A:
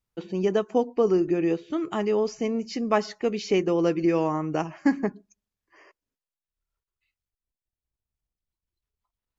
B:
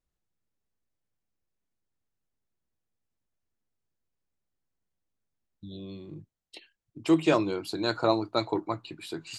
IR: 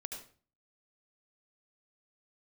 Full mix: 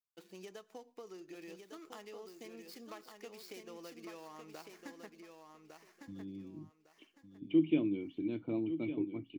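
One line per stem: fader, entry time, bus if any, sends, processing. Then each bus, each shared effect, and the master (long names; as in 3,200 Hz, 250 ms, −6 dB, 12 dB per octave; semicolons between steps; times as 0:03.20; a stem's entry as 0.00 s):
−14.5 dB, 0.00 s, send −18.5 dB, echo send −5 dB, running median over 15 samples; spectral tilt +4.5 dB per octave; downward compressor 6 to 1, threshold −33 dBFS, peak gain reduction 14.5 dB
+2.0 dB, 0.45 s, no send, echo send −10.5 dB, formant resonators in series i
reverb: on, RT60 0.40 s, pre-delay 68 ms
echo: repeating echo 1,155 ms, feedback 25%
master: no processing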